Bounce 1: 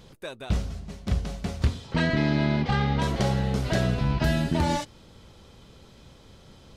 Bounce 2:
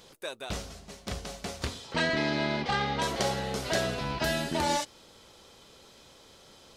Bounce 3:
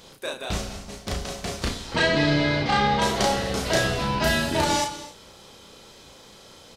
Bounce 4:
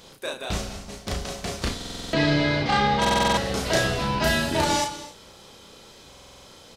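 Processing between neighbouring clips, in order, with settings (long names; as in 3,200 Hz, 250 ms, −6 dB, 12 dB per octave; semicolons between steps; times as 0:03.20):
bass and treble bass −14 dB, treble +5 dB
sub-octave generator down 1 octave, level −6 dB; double-tracking delay 34 ms −3 dB; reverb whose tail is shaped and stops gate 300 ms flat, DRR 10.5 dB; level +4.5 dB
buffer that repeats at 0:01.76/0:03.00/0:06.09, samples 2,048, times 7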